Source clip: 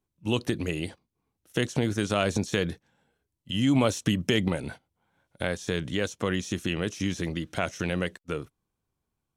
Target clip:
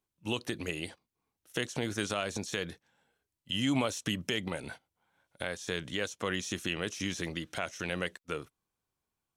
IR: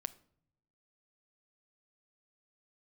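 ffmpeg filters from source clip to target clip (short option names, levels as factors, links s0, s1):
-af "lowshelf=f=430:g=-9.5,alimiter=limit=0.133:level=0:latency=1:release=412"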